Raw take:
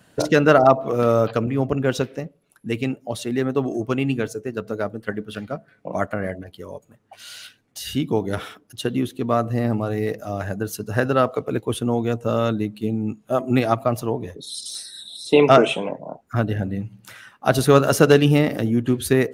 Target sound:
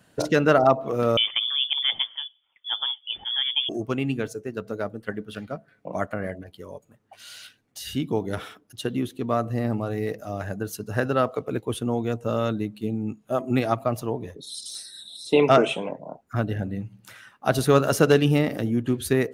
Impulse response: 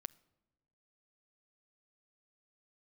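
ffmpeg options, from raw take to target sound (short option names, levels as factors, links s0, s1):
-filter_complex "[0:a]asettb=1/sr,asplit=3[s0][s1][s2];[s0]atrim=end=1.174[s3];[s1]atrim=start=1.17:end=3.69,asetpts=PTS-STARTPTS,afade=t=in:d=0.004:c=qsin,afade=t=out:st=2.516:d=0.004:c=qsin,lowpass=f=3100:t=q:w=0.5098,lowpass=f=3100:t=q:w=0.6013,lowpass=f=3100:t=q:w=0.9,lowpass=f=3100:t=q:w=2.563,afreqshift=-3600[s4];[s2]atrim=start=3.686[s5];[s3][s4]acrossfade=d=0.004:c1=hsin:c2=qsin[s6];[s6][s5]acrossfade=d=0.004:c1=qsin:c2=hsin,volume=0.631"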